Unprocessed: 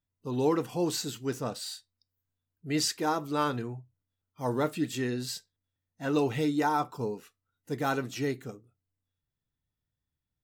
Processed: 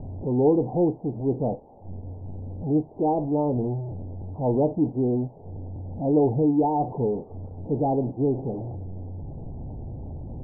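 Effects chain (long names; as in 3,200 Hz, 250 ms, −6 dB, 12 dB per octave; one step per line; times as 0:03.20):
converter with a step at zero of −32 dBFS
Butterworth low-pass 850 Hz 72 dB per octave
level +5.5 dB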